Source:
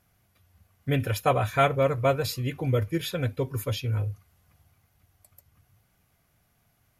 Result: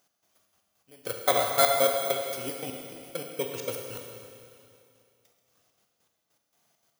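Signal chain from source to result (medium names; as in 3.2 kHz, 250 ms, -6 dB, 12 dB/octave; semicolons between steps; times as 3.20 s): bit-reversed sample order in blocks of 16 samples; high-pass 350 Hz 12 dB/octave; trance gate "x..xxx.x..x..." 200 bpm -24 dB; Schroeder reverb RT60 2.5 s, combs from 27 ms, DRR 2 dB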